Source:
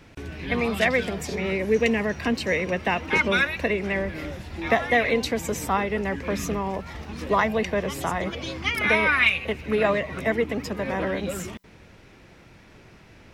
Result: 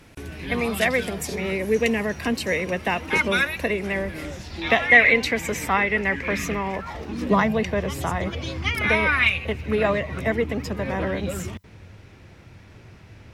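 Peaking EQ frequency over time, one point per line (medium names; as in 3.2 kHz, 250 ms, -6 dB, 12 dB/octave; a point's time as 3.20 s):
peaking EQ +11.5 dB 0.85 oct
4.14 s 11 kHz
4.91 s 2.1 kHz
6.76 s 2.1 kHz
7.08 s 320 Hz
7.77 s 95 Hz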